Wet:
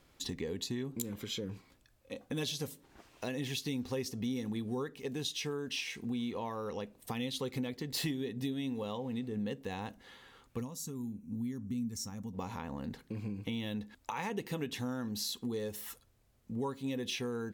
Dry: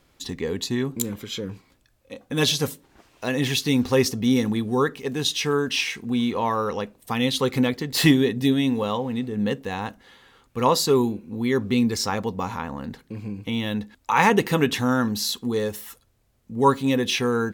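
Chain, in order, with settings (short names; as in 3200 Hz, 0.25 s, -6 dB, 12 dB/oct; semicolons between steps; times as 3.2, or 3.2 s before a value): compressor 4:1, threshold -31 dBFS, peak gain reduction 16.5 dB; spectral gain 10.6–12.34, 300–5400 Hz -14 dB; dynamic EQ 1300 Hz, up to -6 dB, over -49 dBFS, Q 1.3; gain -4 dB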